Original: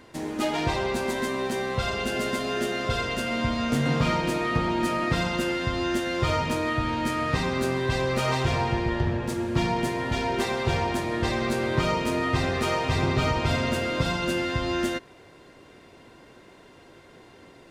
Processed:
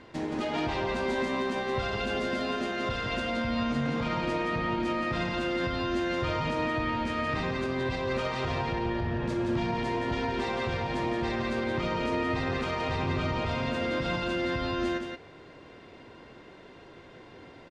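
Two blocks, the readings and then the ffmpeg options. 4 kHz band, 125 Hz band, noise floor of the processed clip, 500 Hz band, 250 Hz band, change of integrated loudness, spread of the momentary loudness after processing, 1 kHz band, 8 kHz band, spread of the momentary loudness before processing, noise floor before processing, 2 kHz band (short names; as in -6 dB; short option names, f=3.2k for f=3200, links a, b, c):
-5.0 dB, -6.5 dB, -51 dBFS, -3.0 dB, -3.0 dB, -4.0 dB, 16 LU, -3.5 dB, -12.5 dB, 3 LU, -51 dBFS, -3.5 dB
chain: -af "lowpass=4.5k,alimiter=limit=-22.5dB:level=0:latency=1:release=117,aecho=1:1:172:0.531"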